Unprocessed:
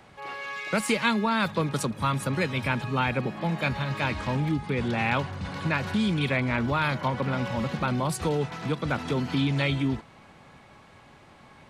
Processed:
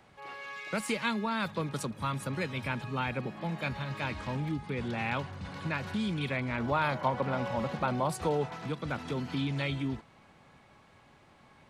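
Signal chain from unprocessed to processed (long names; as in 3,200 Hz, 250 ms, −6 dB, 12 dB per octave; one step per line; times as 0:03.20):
0:06.59–0:08.66: dynamic equaliser 710 Hz, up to +8 dB, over −41 dBFS, Q 0.87
level −7 dB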